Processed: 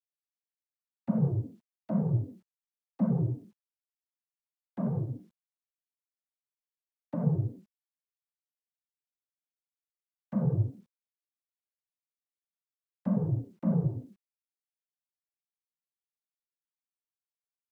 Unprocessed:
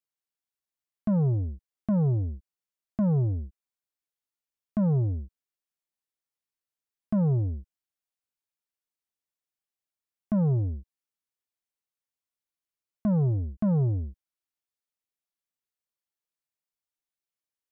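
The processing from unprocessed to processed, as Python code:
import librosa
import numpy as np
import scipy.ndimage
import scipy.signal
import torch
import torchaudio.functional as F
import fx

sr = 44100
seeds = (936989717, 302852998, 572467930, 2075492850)

y = fx.noise_vocoder(x, sr, seeds[0], bands=16)
y = fx.quant_dither(y, sr, seeds[1], bits=12, dither='none')
y = F.gain(torch.from_numpy(y), -4.0).numpy()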